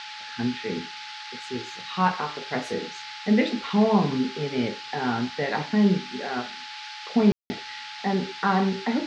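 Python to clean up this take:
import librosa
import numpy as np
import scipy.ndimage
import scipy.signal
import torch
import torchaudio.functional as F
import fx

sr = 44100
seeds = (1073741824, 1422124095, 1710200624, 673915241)

y = fx.notch(x, sr, hz=850.0, q=30.0)
y = fx.fix_ambience(y, sr, seeds[0], print_start_s=0.84, print_end_s=1.34, start_s=7.32, end_s=7.5)
y = fx.noise_reduce(y, sr, print_start_s=6.55, print_end_s=7.05, reduce_db=30.0)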